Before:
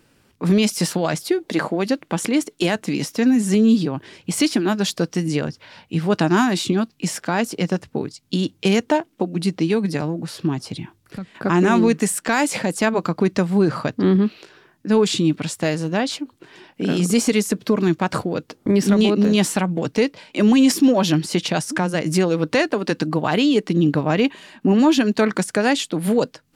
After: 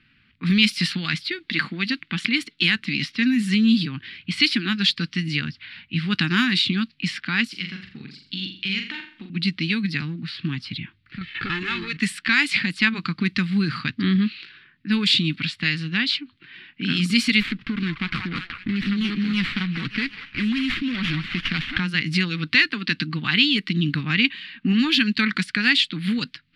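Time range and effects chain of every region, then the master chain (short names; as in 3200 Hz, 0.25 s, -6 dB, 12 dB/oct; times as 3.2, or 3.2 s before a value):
7.47–9.3 high shelf 2700 Hz +8.5 dB + compressor 1.5:1, threshold -45 dBFS + flutter echo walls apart 7.2 m, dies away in 0.47 s
11.21–11.97 comb 2.3 ms, depth 77% + compressor 16:1, threshold -22 dBFS + sample leveller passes 2
17.4–21.8 compressor, threshold -16 dBFS + delay with a stepping band-pass 0.189 s, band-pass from 1000 Hz, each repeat 0.7 oct, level -2 dB + running maximum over 9 samples
whole clip: notch 970 Hz, Q 15; low-pass opened by the level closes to 2600 Hz, open at -12 dBFS; EQ curve 240 Hz 0 dB, 610 Hz -29 dB, 1200 Hz -2 dB, 2100 Hz +11 dB, 4400 Hz +10 dB, 6400 Hz -10 dB, 10000 Hz -4 dB; gain -2.5 dB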